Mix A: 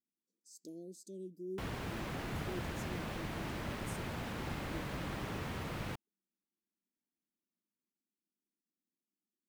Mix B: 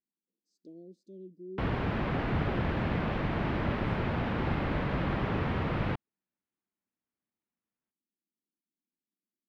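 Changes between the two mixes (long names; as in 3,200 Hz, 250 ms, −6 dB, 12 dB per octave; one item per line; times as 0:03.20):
background +11.0 dB
master: add high-frequency loss of the air 350 metres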